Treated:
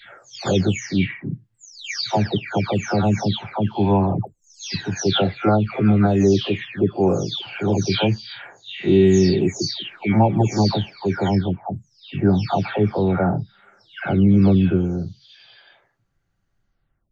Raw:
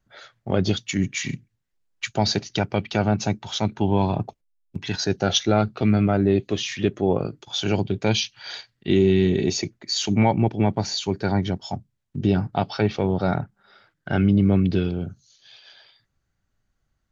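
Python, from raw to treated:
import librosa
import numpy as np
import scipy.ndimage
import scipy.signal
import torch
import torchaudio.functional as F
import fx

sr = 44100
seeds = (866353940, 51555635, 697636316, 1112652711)

y = fx.spec_delay(x, sr, highs='early', ms=481)
y = fx.high_shelf(y, sr, hz=5000.0, db=-7.5)
y = F.gain(torch.from_numpy(y), 4.0).numpy()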